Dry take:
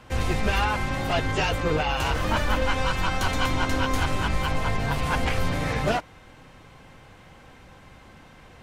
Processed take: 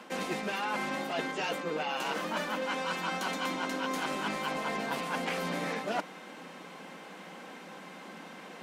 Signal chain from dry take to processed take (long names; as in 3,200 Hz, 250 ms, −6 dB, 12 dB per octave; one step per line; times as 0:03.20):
elliptic high-pass filter 180 Hz, stop band 40 dB
reversed playback
downward compressor 12 to 1, threshold −35 dBFS, peak gain reduction 15.5 dB
reversed playback
level +5 dB